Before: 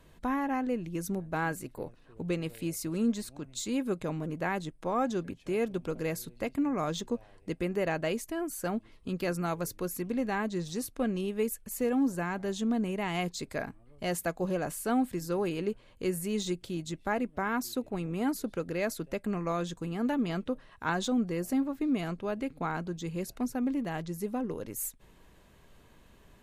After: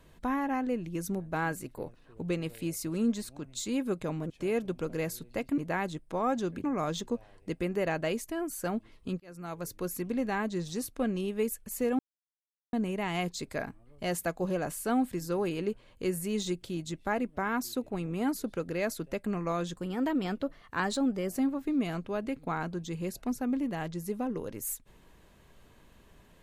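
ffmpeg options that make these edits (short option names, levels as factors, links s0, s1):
-filter_complex "[0:a]asplit=9[s0][s1][s2][s3][s4][s5][s6][s7][s8];[s0]atrim=end=4.302[s9];[s1]atrim=start=5.358:end=6.642[s10];[s2]atrim=start=4.298:end=5.362[s11];[s3]atrim=start=6.638:end=9.2,asetpts=PTS-STARTPTS,afade=t=out:st=2.558:d=0.004:c=hsin[s12];[s4]atrim=start=9.2:end=11.99,asetpts=PTS-STARTPTS,afade=t=in:d=0.68,afade=t=out:st=2.786:d=0.004:c=hsin[s13];[s5]atrim=start=11.99:end=12.73,asetpts=PTS-STARTPTS,volume=0[s14];[s6]atrim=start=12.73:end=19.754,asetpts=PTS-STARTPTS,afade=t=in:d=0.004:c=hsin[s15];[s7]atrim=start=19.75:end=21.43,asetpts=PTS-STARTPTS,asetrate=48069,aresample=44100[s16];[s8]atrim=start=21.426[s17];[s9][s10]acrossfade=d=0.004:c1=hsin:c2=hsin[s18];[s18][s11]acrossfade=d=0.004:c1=hsin:c2=hsin[s19];[s12][s13][s14][s15]concat=n=4:v=0:a=1[s20];[s19][s20]acrossfade=d=0.004:c1=hsin:c2=hsin[s21];[s21][s16]acrossfade=d=0.004:c1=hsin:c2=hsin[s22];[s22][s17]acrossfade=d=0.004:c1=hsin:c2=hsin"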